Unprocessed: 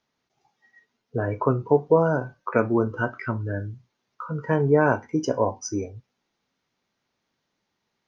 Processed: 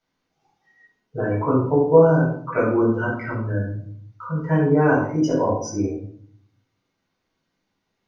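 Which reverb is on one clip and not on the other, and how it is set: shoebox room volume 730 m³, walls furnished, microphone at 7.4 m; gain -8 dB

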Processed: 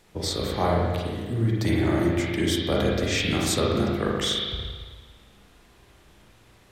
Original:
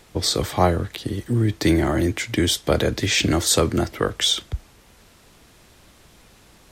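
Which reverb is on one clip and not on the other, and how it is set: spring tank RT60 1.5 s, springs 35/40 ms, chirp 25 ms, DRR -4 dB; gain -8.5 dB

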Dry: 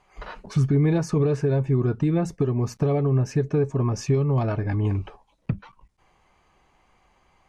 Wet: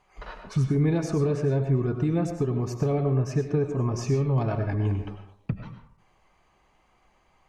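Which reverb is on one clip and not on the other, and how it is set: digital reverb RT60 0.58 s, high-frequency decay 0.55×, pre-delay 60 ms, DRR 6 dB; gain -3 dB

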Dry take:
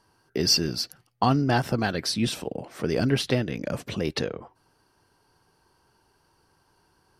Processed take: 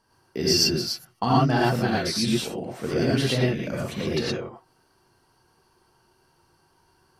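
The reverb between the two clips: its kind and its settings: non-linear reverb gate 0.14 s rising, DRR -5 dB; gain -4 dB

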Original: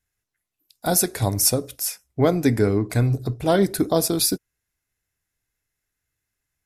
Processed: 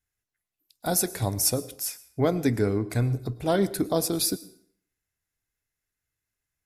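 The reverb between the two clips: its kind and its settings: plate-style reverb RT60 0.59 s, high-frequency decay 0.85×, pre-delay 90 ms, DRR 18.5 dB; gain -5 dB

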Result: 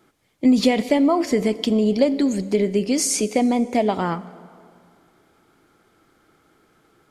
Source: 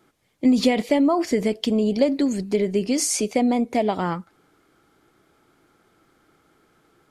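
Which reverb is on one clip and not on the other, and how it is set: plate-style reverb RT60 2.3 s, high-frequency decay 0.75×, DRR 15.5 dB; gain +1.5 dB

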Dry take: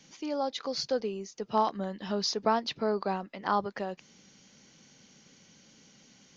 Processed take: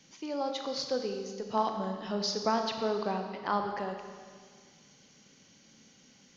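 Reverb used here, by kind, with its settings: Schroeder reverb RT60 1.8 s, combs from 28 ms, DRR 4.5 dB; gain -2.5 dB

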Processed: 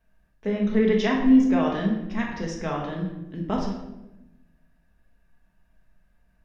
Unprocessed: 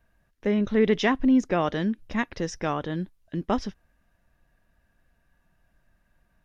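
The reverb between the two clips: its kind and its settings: shoebox room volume 390 m³, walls mixed, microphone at 1.5 m; gain -5 dB

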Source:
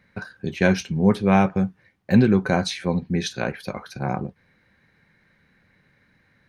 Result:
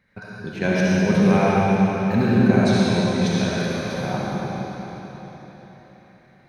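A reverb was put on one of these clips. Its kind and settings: digital reverb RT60 4.3 s, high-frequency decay 0.95×, pre-delay 25 ms, DRR -7.5 dB; gain -5.5 dB

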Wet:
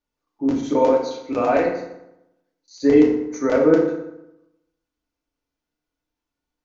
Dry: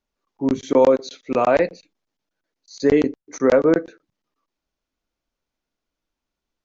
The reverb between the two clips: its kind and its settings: FDN reverb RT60 0.87 s, low-frequency decay 1.1×, high-frequency decay 0.65×, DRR -3 dB; gain -6 dB

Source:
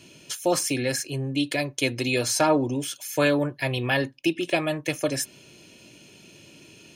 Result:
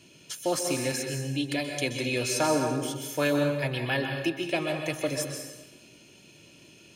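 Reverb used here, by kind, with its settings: plate-style reverb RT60 1.1 s, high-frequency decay 0.85×, pre-delay 0.115 s, DRR 3.5 dB; gain -5 dB

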